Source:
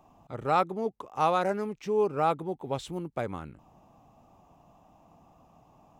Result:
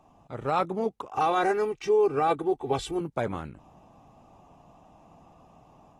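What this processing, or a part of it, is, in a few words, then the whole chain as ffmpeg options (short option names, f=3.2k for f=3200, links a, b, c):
low-bitrate web radio: -filter_complex "[0:a]asettb=1/sr,asplit=3[a][b][c];[a]atrim=end=1.104[d];[b]atrim=start=1.1:end=3.01,asetpts=PTS-STARTPTS,afade=t=in:d=0.004:c=qsin,afade=t=out:st=1.906:d=0.004:c=qsin,aecho=1:1:2.6:0.82,atrim=end_sample=84231[e];[c]atrim=start=3.006[f];[d][e]acrossfade=d=0.004:c1=hsin:c2=qsin[g];[g][f]acrossfade=d=0.004:c1=qsin:c2=hsin,dynaudnorm=f=310:g=3:m=3.5dB,alimiter=limit=-16dB:level=0:latency=1:release=24" -ar 44100 -c:a aac -b:a 32k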